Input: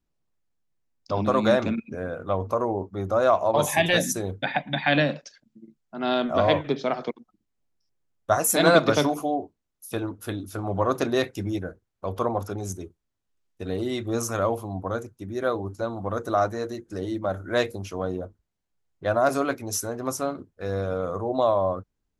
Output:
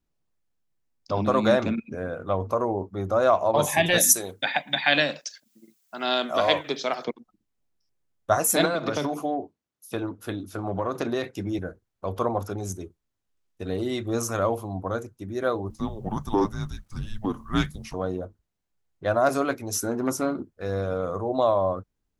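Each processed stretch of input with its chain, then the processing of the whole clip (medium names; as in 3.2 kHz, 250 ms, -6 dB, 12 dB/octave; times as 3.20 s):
3.98–7.05 s: RIAA curve recording + tape noise reduction on one side only encoder only
8.65–11.59 s: high-pass 100 Hz + treble shelf 7.5 kHz -7 dB + compression 12:1, threshold -21 dBFS
15.70–17.94 s: peaking EQ 74 Hz -13 dB 1.5 oct + frequency shift -320 Hz + word length cut 12-bit, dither none
19.76–20.50 s: small resonant body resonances 230/330/1400 Hz, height 8 dB, ringing for 30 ms + transformer saturation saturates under 640 Hz
whole clip: none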